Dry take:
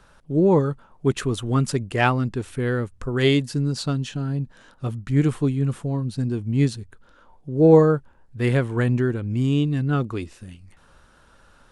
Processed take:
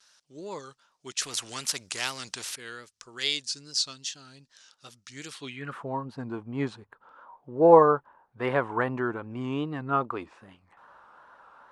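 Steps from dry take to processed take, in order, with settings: vibrato 2.5 Hz 89 cents; band-pass sweep 5500 Hz -> 970 Hz, 5.29–5.83; 1.21–2.56 spectral compressor 2:1; gain +9 dB

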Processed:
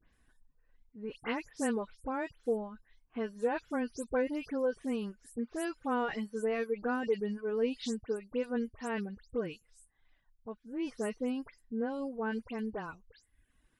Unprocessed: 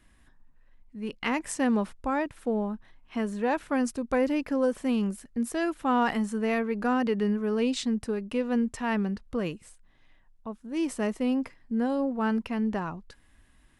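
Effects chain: spectral delay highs late, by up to 0.125 s; small resonant body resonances 460/1500 Hz, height 8 dB; reverb removal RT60 0.8 s; gain -7.5 dB

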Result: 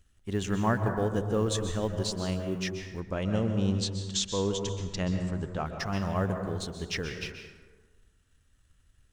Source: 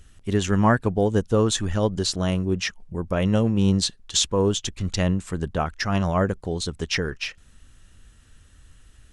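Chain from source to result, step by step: G.711 law mismatch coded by A; 3–5.66 LPF 8100 Hz 24 dB/oct; plate-style reverb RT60 1.4 s, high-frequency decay 0.45×, pre-delay 0.115 s, DRR 5.5 dB; gain -8 dB

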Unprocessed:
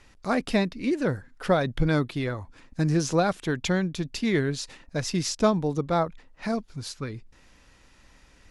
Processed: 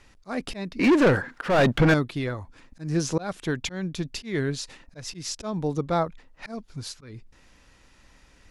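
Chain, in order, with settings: 0.79–1.94 overdrive pedal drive 30 dB, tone 1700 Hz, clips at -9.5 dBFS; auto swell 0.2 s

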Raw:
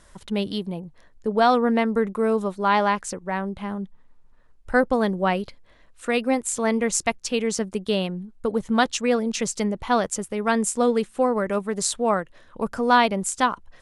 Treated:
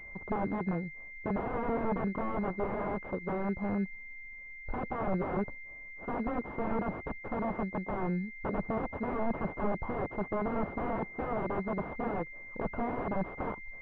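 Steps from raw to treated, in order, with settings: wrapped overs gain 22 dB; pulse-width modulation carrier 2100 Hz; gain -1 dB

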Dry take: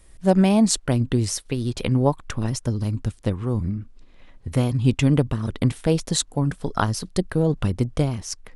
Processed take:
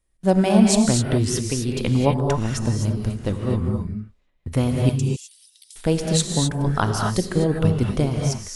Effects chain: gate with hold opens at -35 dBFS; 4.89–5.76 inverse Chebyshev high-pass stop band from 850 Hz, stop band 80 dB; non-linear reverb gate 0.28 s rising, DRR 1 dB

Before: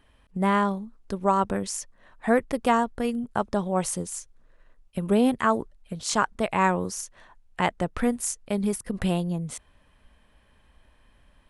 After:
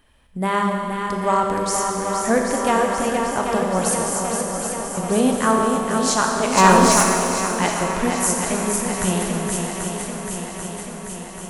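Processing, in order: high shelf 4900 Hz +7.5 dB; notches 50/100/150/200 Hz; swung echo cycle 0.787 s, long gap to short 1.5:1, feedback 64%, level -6 dB; 6.57–7.03 sample leveller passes 2; Schroeder reverb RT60 2.5 s, combs from 28 ms, DRR 2 dB; gain +1.5 dB

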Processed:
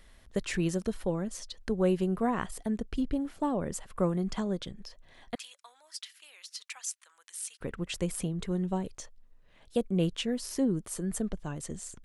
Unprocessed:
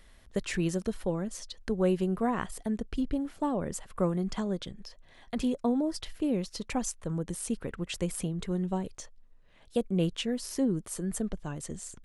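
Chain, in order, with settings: 5.35–7.61 Bessel high-pass 2000 Hz, order 4

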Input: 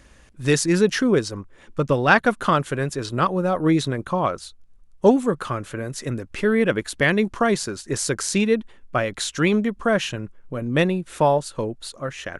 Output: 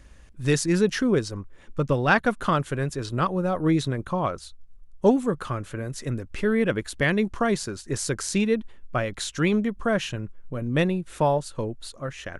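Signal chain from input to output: low shelf 110 Hz +9.5 dB; gain -4.5 dB

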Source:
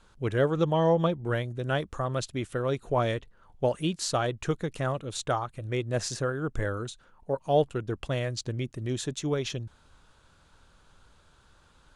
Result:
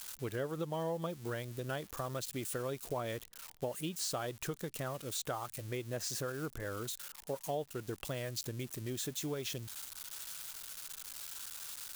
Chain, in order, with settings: switching spikes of -29.5 dBFS; compressor 4:1, threshold -30 dBFS, peak gain reduction 11 dB; low shelf 84 Hz -9.5 dB; gain -4.5 dB

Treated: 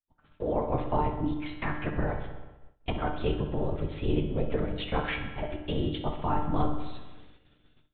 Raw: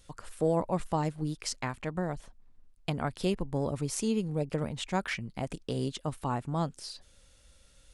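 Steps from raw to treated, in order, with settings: LPC vocoder at 8 kHz whisper; AGC gain up to 15 dB; resonator 150 Hz, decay 0.81 s, harmonics all, mix 80%; dark delay 63 ms, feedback 71%, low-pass 2400 Hz, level -9 dB; expander -46 dBFS

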